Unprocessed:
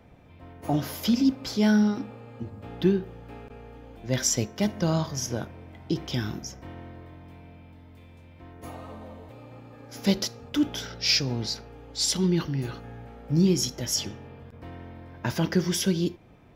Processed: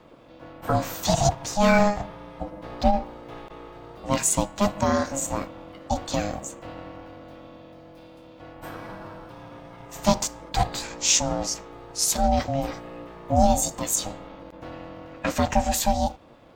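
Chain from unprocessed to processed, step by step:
formants moved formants +4 semitones
ring modulation 410 Hz
level +5.5 dB

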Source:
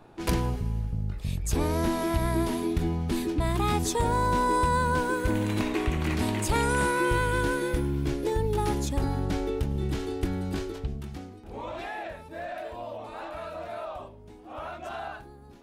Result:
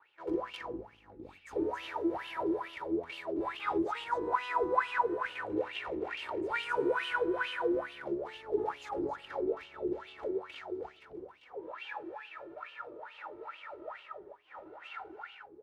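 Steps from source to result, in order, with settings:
lower of the sound and its delayed copy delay 2.2 ms
single-tap delay 266 ms −3.5 dB
LFO wah 2.3 Hz 330–3,000 Hz, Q 8.9
level +6 dB

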